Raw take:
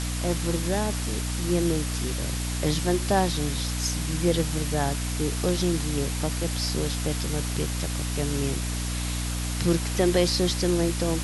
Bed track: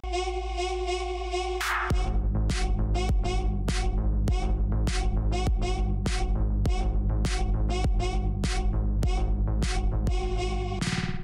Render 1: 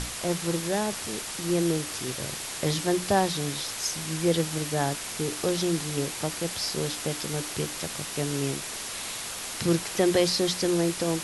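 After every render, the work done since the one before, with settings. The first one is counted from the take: hum notches 60/120/180/240/300 Hz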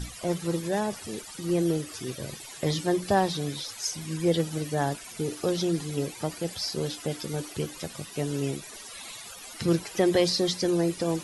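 noise reduction 16 dB, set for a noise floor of -36 dBFS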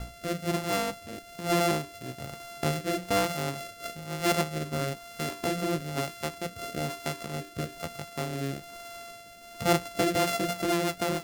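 sorted samples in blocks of 64 samples; rotary cabinet horn 1.1 Hz, later 7 Hz, at 9.93 s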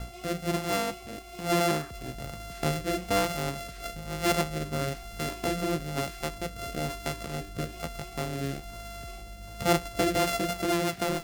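add bed track -19 dB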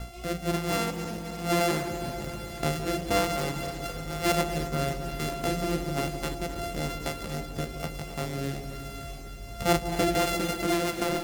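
backward echo that repeats 131 ms, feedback 82%, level -12.5 dB; bucket-brigade echo 166 ms, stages 1024, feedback 73%, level -11 dB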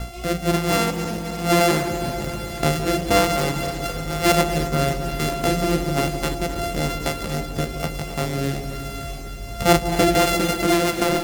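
trim +8 dB

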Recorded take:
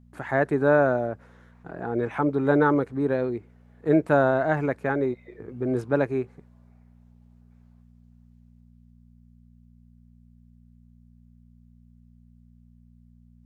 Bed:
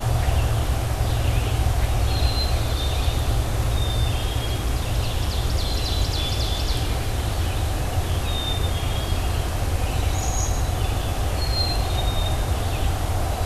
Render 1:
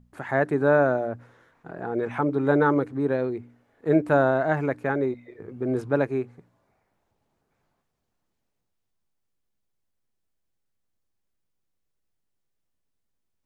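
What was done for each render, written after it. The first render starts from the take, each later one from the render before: de-hum 60 Hz, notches 5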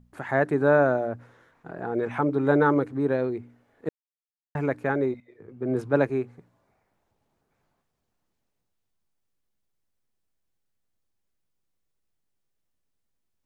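3.89–4.55 s: mute; 5.20–6.10 s: three bands expanded up and down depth 40%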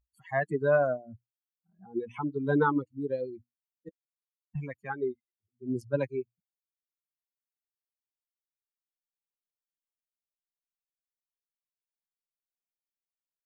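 expander on every frequency bin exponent 3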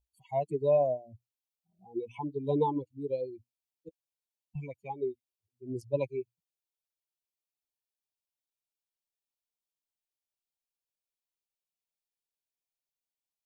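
Chebyshev band-stop 990–2300 Hz, order 4; peaking EQ 220 Hz -10.5 dB 0.63 oct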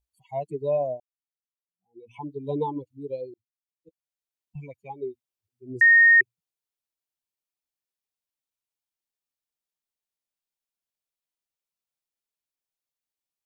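1.00–2.14 s: fade in exponential; 3.34–4.58 s: fade in; 5.81–6.21 s: bleep 1.85 kHz -11.5 dBFS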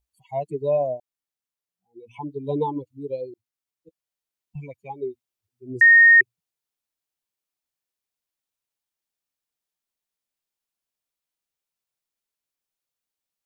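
trim +3 dB

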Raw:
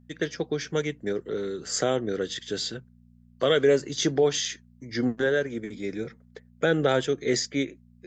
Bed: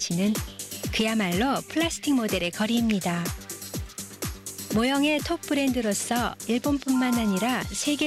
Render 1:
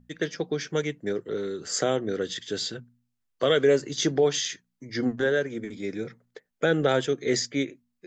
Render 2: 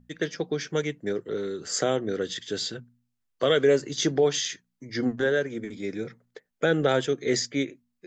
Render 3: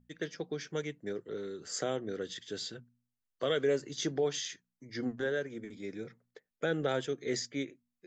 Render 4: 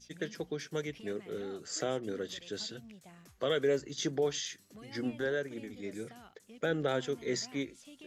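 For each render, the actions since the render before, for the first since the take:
de-hum 60 Hz, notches 4
no audible change
trim -9 dB
add bed -28.5 dB

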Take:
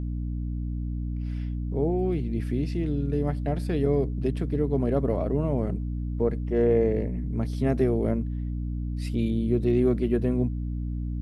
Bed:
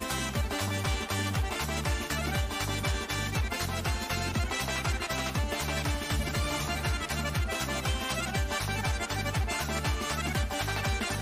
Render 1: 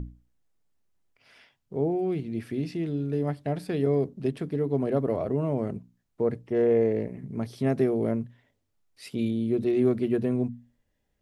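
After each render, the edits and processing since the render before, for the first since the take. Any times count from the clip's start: hum notches 60/120/180/240/300 Hz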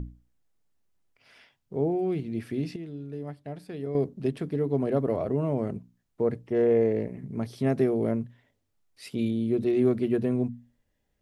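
2.76–3.95 s: gain -9 dB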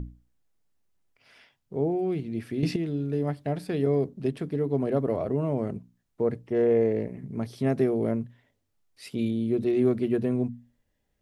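2.63–3.95 s: gain +9 dB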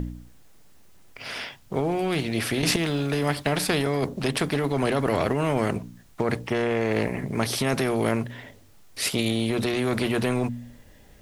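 in parallel at +0.5 dB: compressor with a negative ratio -27 dBFS, ratio -0.5; on the sum: spectrum-flattening compressor 2:1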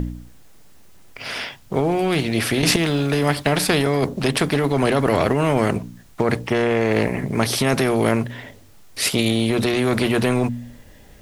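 trim +5.5 dB

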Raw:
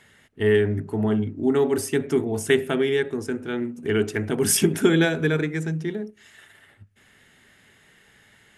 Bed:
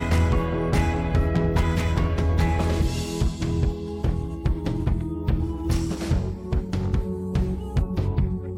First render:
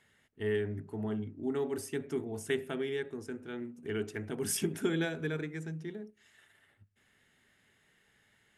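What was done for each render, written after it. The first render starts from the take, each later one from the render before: trim -13 dB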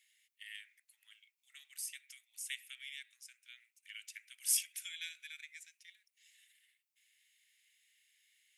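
elliptic high-pass 2.2 kHz, stop band 80 dB; treble shelf 10 kHz +9 dB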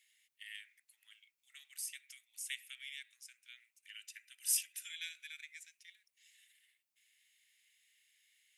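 3.89–4.90 s: comb of notches 1.1 kHz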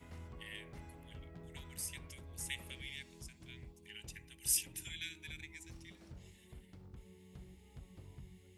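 add bed -30.5 dB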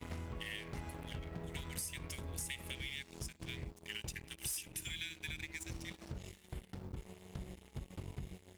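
waveshaping leveller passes 3; compression 12:1, threshold -39 dBFS, peak gain reduction 16 dB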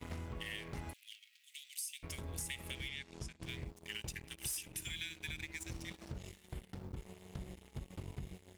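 0.93–2.03 s: steep high-pass 2.5 kHz; 2.88–3.43 s: distance through air 53 m

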